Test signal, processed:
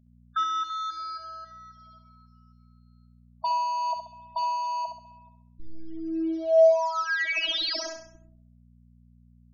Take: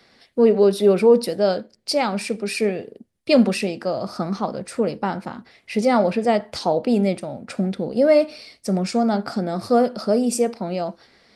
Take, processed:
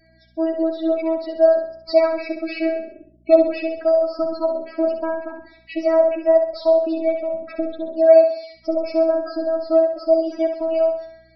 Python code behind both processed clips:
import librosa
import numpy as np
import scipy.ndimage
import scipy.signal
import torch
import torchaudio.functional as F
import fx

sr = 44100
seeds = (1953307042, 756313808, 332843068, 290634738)

y = fx.cvsd(x, sr, bps=32000)
y = fx.robotise(y, sr, hz=324.0)
y = fx.rider(y, sr, range_db=3, speed_s=0.5)
y = fx.dmg_buzz(y, sr, base_hz=60.0, harmonics=4, level_db=-60.0, tilt_db=-2, odd_only=False)
y = fx.spec_topn(y, sr, count=16)
y = fx.graphic_eq_31(y, sr, hz=(400, 630, 1000), db=(-4, 9, -5))
y = fx.echo_feedback(y, sr, ms=66, feedback_pct=46, wet_db=-7.0)